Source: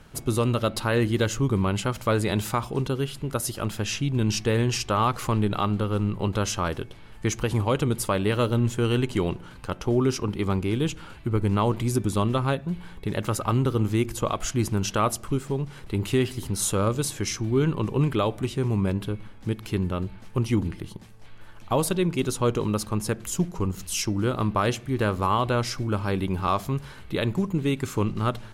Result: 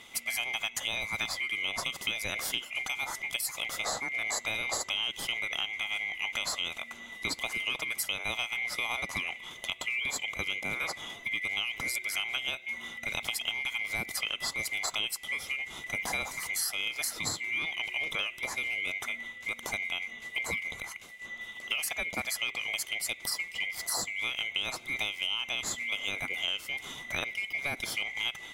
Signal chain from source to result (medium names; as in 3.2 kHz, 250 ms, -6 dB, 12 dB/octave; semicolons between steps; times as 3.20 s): split-band scrambler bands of 2 kHz; peaking EQ 2.2 kHz -12.5 dB 0.45 oct; compression 5:1, threshold -35 dBFS, peak gain reduction 12.5 dB; trim +5 dB